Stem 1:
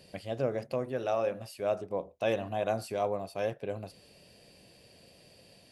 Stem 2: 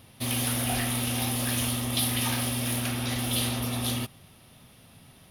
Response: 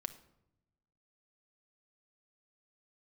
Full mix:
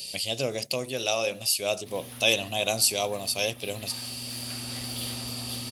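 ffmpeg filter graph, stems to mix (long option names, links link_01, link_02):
-filter_complex "[0:a]aexciter=amount=14:drive=2.9:freq=2500,volume=1dB,asplit=2[link_01][link_02];[1:a]adelay=1650,volume=-6.5dB[link_03];[link_02]apad=whole_len=306737[link_04];[link_03][link_04]sidechaincompress=threshold=-33dB:ratio=8:attack=32:release=1490[link_05];[link_01][link_05]amix=inputs=2:normalize=0"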